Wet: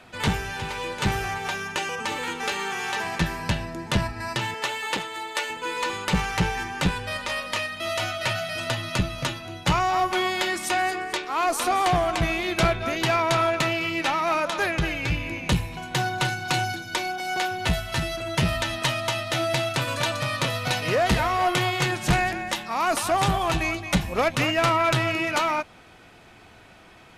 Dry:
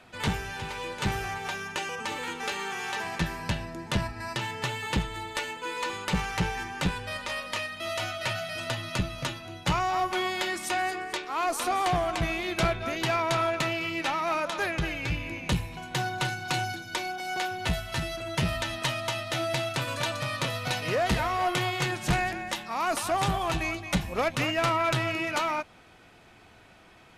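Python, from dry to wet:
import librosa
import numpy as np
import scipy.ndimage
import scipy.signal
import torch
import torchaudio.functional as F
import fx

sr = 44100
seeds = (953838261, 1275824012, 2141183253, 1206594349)

y = fx.highpass(x, sr, hz=390.0, slope=12, at=(4.54, 5.5))
y = F.gain(torch.from_numpy(y), 4.5).numpy()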